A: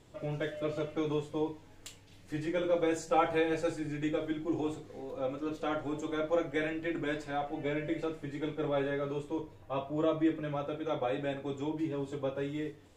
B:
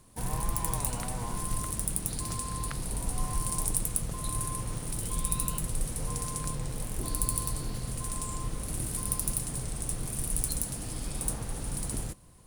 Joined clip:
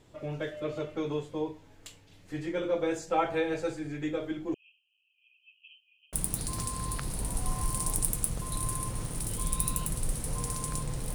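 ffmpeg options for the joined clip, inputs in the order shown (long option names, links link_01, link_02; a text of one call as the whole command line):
ffmpeg -i cue0.wav -i cue1.wav -filter_complex "[0:a]asettb=1/sr,asplit=3[link_01][link_02][link_03];[link_01]atrim=end=4.544[link_04];[link_02]atrim=start=4.54:end=6.13,asetpts=PTS-STARTPTS,afade=type=in:duration=0.004:curve=qsin,afade=type=out:start_time=1.586:duration=0.004:curve=qsin,asuperpass=centerf=2800:order=20:qfactor=3.9[link_05];[link_03]atrim=start=6.126[link_06];[link_04][link_05]acrossfade=duration=0.004:curve1=hsin:curve2=qsin[link_07];[link_07][link_06]acrossfade=duration=0.004:curve1=qsin:curve2=hsin,apad=whole_dur=11.14,atrim=end=11.14,atrim=end=6.132[link_08];[1:a]atrim=start=1.848:end=6.86[link_09];[link_08][link_09]acrossfade=duration=0.004:curve1=hsin:curve2=hsin" out.wav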